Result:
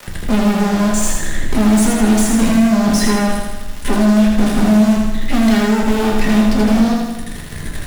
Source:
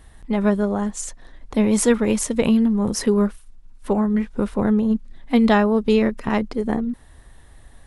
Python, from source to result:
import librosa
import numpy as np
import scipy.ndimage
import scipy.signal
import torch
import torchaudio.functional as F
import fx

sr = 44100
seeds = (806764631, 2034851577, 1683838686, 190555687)

p1 = fx.band_shelf(x, sr, hz=810.0, db=-11.5, octaves=1.7)
p2 = fx.rider(p1, sr, range_db=4, speed_s=0.5)
p3 = p1 + (p2 * 10.0 ** (-2.0 / 20.0))
p4 = fx.fuzz(p3, sr, gain_db=33.0, gate_db=-34.0)
p5 = fx.dmg_crackle(p4, sr, seeds[0], per_s=220.0, level_db=-25.0)
p6 = p5 + fx.echo_feedback(p5, sr, ms=80, feedback_pct=54, wet_db=-3.5, dry=0)
p7 = fx.room_shoebox(p6, sr, seeds[1], volume_m3=120.0, walls='furnished', distance_m=1.3)
p8 = fx.band_squash(p7, sr, depth_pct=40)
y = p8 * 10.0 ** (-5.5 / 20.0)